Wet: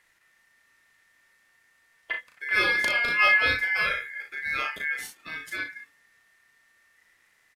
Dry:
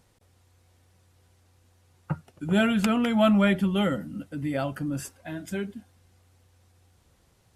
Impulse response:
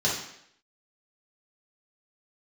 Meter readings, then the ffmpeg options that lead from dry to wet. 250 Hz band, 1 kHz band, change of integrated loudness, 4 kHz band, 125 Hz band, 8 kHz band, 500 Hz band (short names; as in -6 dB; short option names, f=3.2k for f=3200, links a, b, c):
-23.0 dB, +1.0 dB, +1.5 dB, +4.0 dB, -18.5 dB, -1.5 dB, -9.5 dB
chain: -af "aeval=exprs='val(0)*sin(2*PI*1900*n/s)':c=same,aecho=1:1:36|61:0.631|0.335"